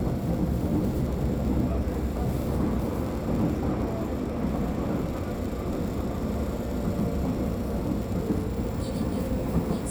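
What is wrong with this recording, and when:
crackle 45/s -33 dBFS

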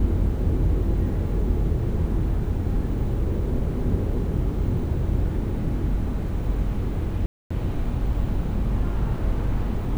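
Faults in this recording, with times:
7.26–7.5 gap 0.245 s

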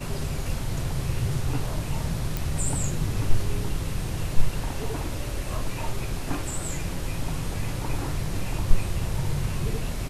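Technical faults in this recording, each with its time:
2.37 pop

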